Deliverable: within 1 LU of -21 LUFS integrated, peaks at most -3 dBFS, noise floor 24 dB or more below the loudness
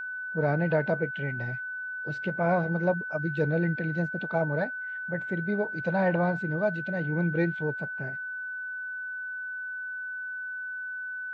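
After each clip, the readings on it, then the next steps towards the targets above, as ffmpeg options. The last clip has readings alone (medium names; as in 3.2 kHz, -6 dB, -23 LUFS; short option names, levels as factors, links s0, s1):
steady tone 1.5 kHz; tone level -33 dBFS; loudness -30.0 LUFS; peak level -13.0 dBFS; loudness target -21.0 LUFS
-> -af "bandreject=f=1500:w=30"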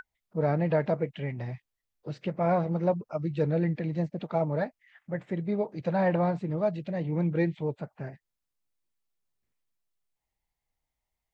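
steady tone not found; loudness -29.5 LUFS; peak level -13.5 dBFS; loudness target -21.0 LUFS
-> -af "volume=2.66"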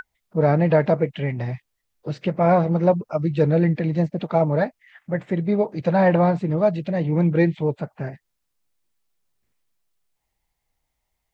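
loudness -21.0 LUFS; peak level -5.5 dBFS; noise floor -78 dBFS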